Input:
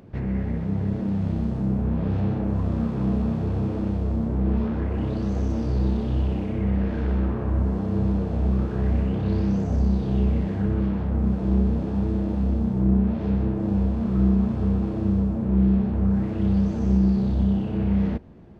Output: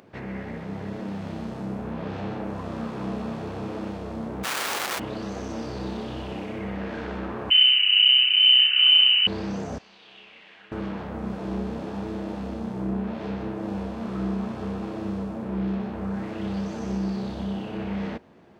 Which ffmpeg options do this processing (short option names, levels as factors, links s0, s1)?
-filter_complex "[0:a]asplit=3[s0][s1][s2];[s0]afade=t=out:st=4.43:d=0.02[s3];[s1]aeval=exprs='(mod(21.1*val(0)+1,2)-1)/21.1':c=same,afade=t=in:st=4.43:d=0.02,afade=t=out:st=4.98:d=0.02[s4];[s2]afade=t=in:st=4.98:d=0.02[s5];[s3][s4][s5]amix=inputs=3:normalize=0,asettb=1/sr,asplit=3[s6][s7][s8];[s6]atrim=end=7.504[s9];[s7]atrim=start=7.5:end=9.27,asetpts=PTS-STARTPTS,afade=t=in:d=0.004:c=qsin,afade=t=out:st=1.766:d=0.004:c=qsin,lowpass=f=2600:t=q:w=0.5098,lowpass=f=2600:t=q:w=0.6013,lowpass=f=2600:t=q:w=0.9,lowpass=f=2600:t=q:w=2.563,afreqshift=-3100[s10];[s8]atrim=start=9.266[s11];[s9][s10]acrossfade=d=0.004:c1=hsin:c2=qsin[s12];[s12][s11]acrossfade=d=0.004:c1=qsin:c2=hsin,asettb=1/sr,asplit=3[s13][s14][s15];[s13]atrim=end=9.784[s16];[s14]atrim=start=9.78:end=10.72,asetpts=PTS-STARTPTS,afade=t=in:d=0.004:c=qsin,afade=t=out:st=0.936:d=0.004:c=qsin,bandpass=f=2800:t=q:w=2.4[s17];[s15]atrim=start=10.716[s18];[s16][s17]acrossfade=d=0.004:c1=hsin:c2=qsin[s19];[s19][s18]acrossfade=d=0.004:c1=qsin:c2=hsin,highpass=f=890:p=1,volume=1.88"